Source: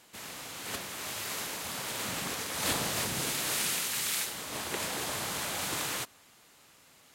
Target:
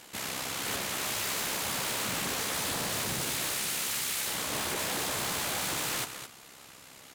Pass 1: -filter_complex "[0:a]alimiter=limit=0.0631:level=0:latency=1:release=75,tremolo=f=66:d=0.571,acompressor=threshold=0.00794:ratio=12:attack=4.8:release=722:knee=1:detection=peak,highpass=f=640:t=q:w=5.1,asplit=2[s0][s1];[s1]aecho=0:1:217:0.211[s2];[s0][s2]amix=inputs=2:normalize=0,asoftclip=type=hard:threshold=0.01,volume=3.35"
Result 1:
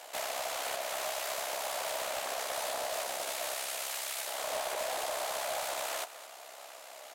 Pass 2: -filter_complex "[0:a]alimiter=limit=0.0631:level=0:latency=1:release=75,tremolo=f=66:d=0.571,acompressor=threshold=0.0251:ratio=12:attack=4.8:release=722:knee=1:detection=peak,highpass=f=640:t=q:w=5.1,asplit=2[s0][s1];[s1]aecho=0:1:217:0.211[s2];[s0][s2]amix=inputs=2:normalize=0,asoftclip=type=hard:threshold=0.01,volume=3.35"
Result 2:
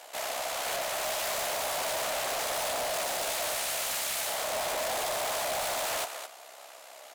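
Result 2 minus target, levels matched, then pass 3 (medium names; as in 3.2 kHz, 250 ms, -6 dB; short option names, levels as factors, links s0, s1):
500 Hz band +7.0 dB
-filter_complex "[0:a]alimiter=limit=0.0631:level=0:latency=1:release=75,tremolo=f=66:d=0.571,acompressor=threshold=0.0251:ratio=12:attack=4.8:release=722:knee=1:detection=peak,asplit=2[s0][s1];[s1]aecho=0:1:217:0.211[s2];[s0][s2]amix=inputs=2:normalize=0,asoftclip=type=hard:threshold=0.01,volume=3.35"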